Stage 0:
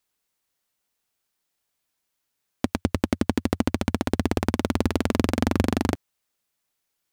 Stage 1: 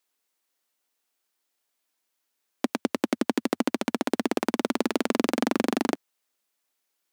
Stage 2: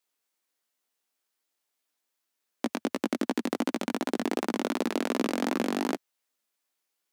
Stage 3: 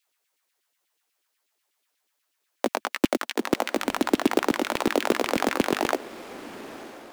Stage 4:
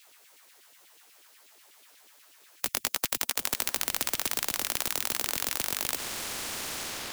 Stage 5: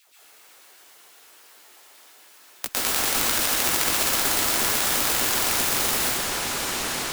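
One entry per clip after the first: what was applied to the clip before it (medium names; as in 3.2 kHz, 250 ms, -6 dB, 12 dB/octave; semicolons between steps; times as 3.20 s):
high-pass 230 Hz 24 dB/octave
chorus 2.7 Hz, delay 15 ms, depth 6 ms
LFO high-pass saw down 8.2 Hz 250–3100 Hz; short-mantissa float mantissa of 2-bit; echo that smears into a reverb 966 ms, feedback 41%, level -15.5 dB; trim +4.5 dB
spectrum-flattening compressor 10:1; trim +6 dB
in parallel at -10.5 dB: hysteresis with a dead band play -32 dBFS; on the sum: plate-style reverb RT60 1.9 s, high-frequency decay 0.6×, pre-delay 105 ms, DRR -9.5 dB; trim -2.5 dB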